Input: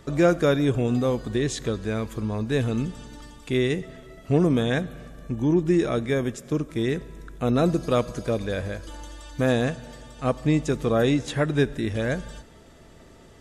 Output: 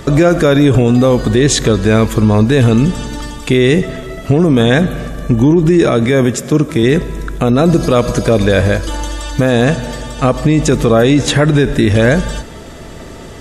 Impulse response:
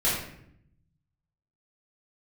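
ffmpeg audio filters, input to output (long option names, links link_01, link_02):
-filter_complex "[0:a]asettb=1/sr,asplit=3[link_01][link_02][link_03];[link_01]atrim=end=5.844[link_04];[link_02]atrim=start=5.84:end=6.83,asetpts=PTS-STARTPTS,afade=type=in:duration=0.004:curve=qsin,afade=type=out:start_time=0.986:duration=0.004:curve=qsin,highpass=frequency=64:width=0.5412,highpass=frequency=64:width=1.3066[link_05];[link_03]atrim=start=6.826[link_06];[link_04][link_05]acrossfade=duration=0.004:curve1=hsin:curve2=qsin[link_07];[link_07][link_06]acrossfade=duration=0.004:curve1=qsin:curve2=hsin,alimiter=level_in=20dB:limit=-1dB:release=50:level=0:latency=1,volume=-1dB"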